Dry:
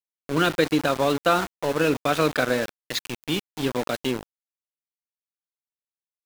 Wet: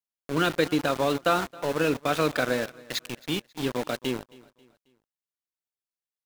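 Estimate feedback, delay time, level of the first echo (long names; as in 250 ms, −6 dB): 41%, 270 ms, −22.5 dB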